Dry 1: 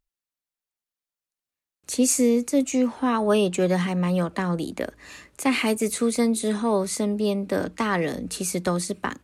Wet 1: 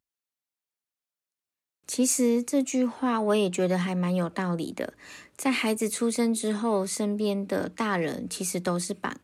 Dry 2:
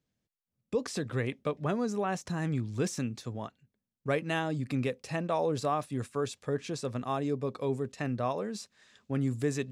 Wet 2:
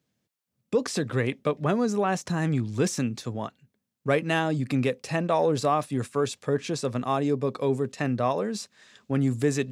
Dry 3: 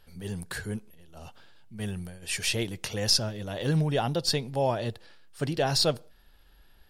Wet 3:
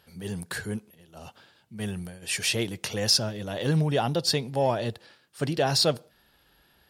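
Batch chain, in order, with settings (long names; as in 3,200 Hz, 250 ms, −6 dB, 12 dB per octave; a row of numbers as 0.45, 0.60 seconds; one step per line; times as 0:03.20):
in parallel at −9.5 dB: soft clipping −23 dBFS
on the sum: high-pass filter 100 Hz 12 dB per octave
loudness normalisation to −27 LKFS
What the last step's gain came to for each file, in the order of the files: −4.5, +4.0, 0.0 decibels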